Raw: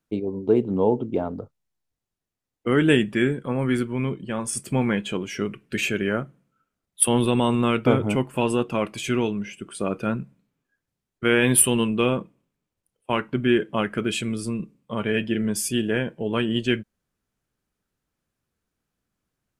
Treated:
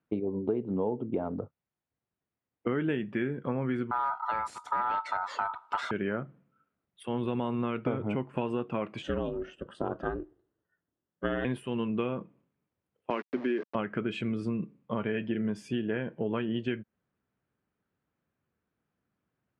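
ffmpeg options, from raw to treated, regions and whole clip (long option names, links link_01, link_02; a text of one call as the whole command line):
ffmpeg -i in.wav -filter_complex "[0:a]asettb=1/sr,asplit=3[link_01][link_02][link_03];[link_01]atrim=end=3.914[link_04];[link_02]atrim=start=3.91:end=5.91,asetpts=PTS-STARTPTS,afade=type=in:duration=0.004:curve=qsin,afade=type=out:start_time=1.996:duration=0.004:curve=qsin,bass=frequency=250:gain=12,treble=frequency=4000:gain=15,volume=14dB,asoftclip=hard,volume=-14dB,aeval=exprs='val(0)*sin(2*PI*1100*n/s)':channel_layout=same[link_05];[link_03]atrim=start=5.906[link_06];[link_04][link_05]acrossfade=duration=0.004:curve1=hsin:curve2=qsin[link_07];[link_07][link_06]acrossfade=duration=0.004:curve1=qsin:curve2=hsin,asettb=1/sr,asplit=3[link_08][link_09][link_10];[link_08]atrim=end=9.024[link_11];[link_09]atrim=start=9.02:end=11.45,asetpts=PTS-STARTPTS,afade=type=in:duration=0.004:curve=qsin,afade=type=out:start_time=2.426:duration=0.004:curve=qsin,asuperstop=centerf=2300:order=8:qfactor=3.1,aeval=exprs='val(0)*sin(2*PI*170*n/s)':channel_layout=same[link_12];[link_10]atrim=start=11.446[link_13];[link_11][link_12]acrossfade=duration=0.004:curve1=hsin:curve2=qsin[link_14];[link_14][link_13]acrossfade=duration=0.004:curve1=qsin:curve2=hsin,asettb=1/sr,asplit=3[link_15][link_16][link_17];[link_15]atrim=end=13.104[link_18];[link_16]atrim=start=13.1:end=13.75,asetpts=PTS-STARTPTS,afade=type=in:duration=0.004:curve=qsin,afade=type=out:start_time=0.646:duration=0.004:curve=qsin,aeval=exprs='val(0)*gte(abs(val(0)),0.0299)':channel_layout=same,highpass=frequency=230:width=0.5412,highpass=frequency=230:width=1.3066,equalizer=frequency=820:width_type=q:width=4:gain=-4,equalizer=frequency=1400:width_type=q:width=4:gain=-5,equalizer=frequency=3200:width_type=q:width=4:gain=-4,lowpass=frequency=6300:width=0.5412,lowpass=frequency=6300:width=1.3066[link_19];[link_17]atrim=start=13.746[link_20];[link_18][link_19]acrossfade=duration=0.004:curve1=hsin:curve2=qsin[link_21];[link_21][link_20]acrossfade=duration=0.004:curve1=qsin:curve2=hsin,highpass=83,acompressor=threshold=-27dB:ratio=6,lowpass=2200" out.wav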